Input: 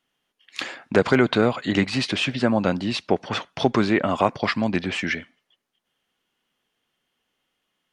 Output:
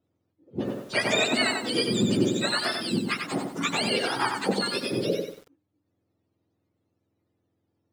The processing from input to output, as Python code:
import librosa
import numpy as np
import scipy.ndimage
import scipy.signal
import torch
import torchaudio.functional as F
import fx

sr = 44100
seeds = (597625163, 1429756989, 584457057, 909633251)

y = fx.octave_mirror(x, sr, pivot_hz=970.0)
y = fx.hum_notches(y, sr, base_hz=50, count=6)
y = fx.echo_crushed(y, sr, ms=93, feedback_pct=35, bits=8, wet_db=-5)
y = y * librosa.db_to_amplitude(-2.5)